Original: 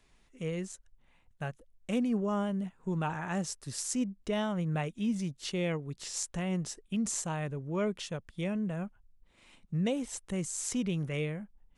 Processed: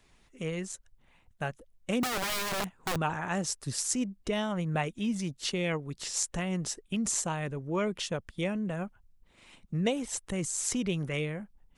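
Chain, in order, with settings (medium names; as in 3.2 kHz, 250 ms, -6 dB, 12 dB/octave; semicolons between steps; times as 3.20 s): 2.03–2.96 s: integer overflow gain 30 dB; harmonic-percussive split percussive +6 dB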